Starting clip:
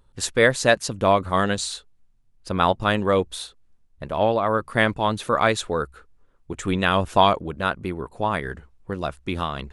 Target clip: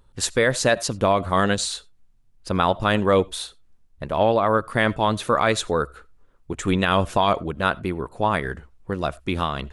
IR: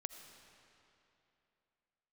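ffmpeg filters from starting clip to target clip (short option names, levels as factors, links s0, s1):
-filter_complex "[0:a]asplit=2[s0][s1];[1:a]atrim=start_sample=2205,atrim=end_sample=4410[s2];[s1][s2]afir=irnorm=-1:irlink=0,volume=0.708[s3];[s0][s3]amix=inputs=2:normalize=0,alimiter=level_in=1.88:limit=0.891:release=50:level=0:latency=1,volume=0.473"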